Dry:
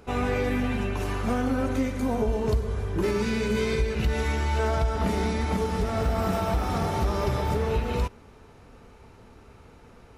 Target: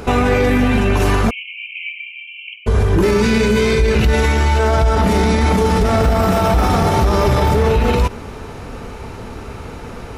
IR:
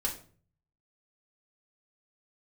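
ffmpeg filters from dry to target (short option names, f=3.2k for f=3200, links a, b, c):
-filter_complex "[0:a]asplit=3[a][b][c];[a]afade=t=out:st=1.29:d=0.02[d];[b]asuperpass=centerf=2600:order=20:qfactor=2.8,afade=t=in:st=1.29:d=0.02,afade=t=out:st=2.66:d=0.02[e];[c]afade=t=in:st=2.66:d=0.02[f];[d][e][f]amix=inputs=3:normalize=0,alimiter=level_in=25.5dB:limit=-1dB:release=50:level=0:latency=1,volume=-5.5dB"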